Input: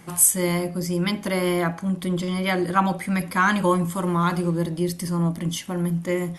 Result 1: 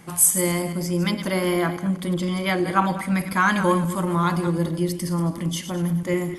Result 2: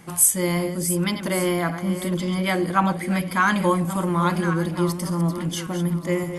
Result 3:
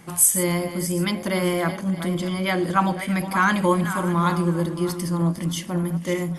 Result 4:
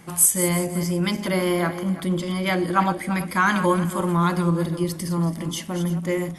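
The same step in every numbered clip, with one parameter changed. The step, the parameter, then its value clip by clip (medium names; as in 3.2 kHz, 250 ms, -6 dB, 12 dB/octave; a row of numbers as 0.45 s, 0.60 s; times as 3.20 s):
backward echo that repeats, time: 104 ms, 567 ms, 307 ms, 167 ms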